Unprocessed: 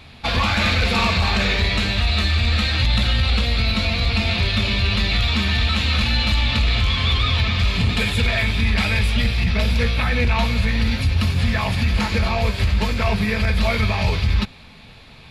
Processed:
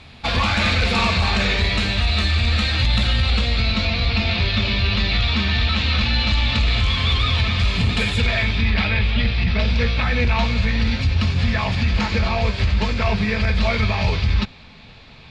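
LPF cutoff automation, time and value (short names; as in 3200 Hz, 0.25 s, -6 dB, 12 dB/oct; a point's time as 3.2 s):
LPF 24 dB/oct
3.18 s 9700 Hz
4 s 5800 Hz
6.13 s 5800 Hz
6.87 s 9400 Hz
8.04 s 9400 Hz
8.96 s 4000 Hz
10.15 s 6600 Hz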